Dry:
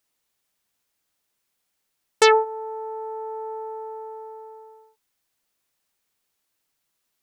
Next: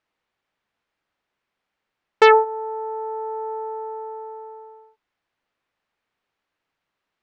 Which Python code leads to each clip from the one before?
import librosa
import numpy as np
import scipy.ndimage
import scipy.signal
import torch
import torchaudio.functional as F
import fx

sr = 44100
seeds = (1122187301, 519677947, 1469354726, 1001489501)

y = scipy.signal.sosfilt(scipy.signal.butter(2, 2300.0, 'lowpass', fs=sr, output='sos'), x)
y = fx.low_shelf(y, sr, hz=420.0, db=-4.0)
y = F.gain(torch.from_numpy(y), 5.0).numpy()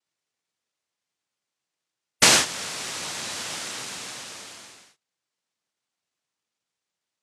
y = fx.noise_vocoder(x, sr, seeds[0], bands=1)
y = fx.spec_gate(y, sr, threshold_db=-25, keep='strong')
y = F.gain(torch.from_numpy(y), -4.5).numpy()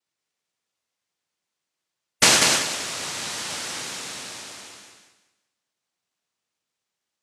y = fx.echo_feedback(x, sr, ms=191, feedback_pct=28, wet_db=-3.5)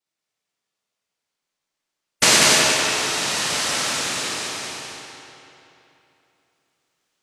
y = fx.rider(x, sr, range_db=4, speed_s=2.0)
y = fx.rev_freeverb(y, sr, rt60_s=3.0, hf_ratio=0.8, predelay_ms=0, drr_db=-2.0)
y = F.gain(torch.from_numpy(y), 1.5).numpy()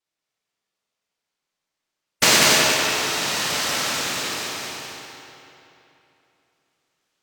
y = np.interp(np.arange(len(x)), np.arange(len(x))[::2], x[::2])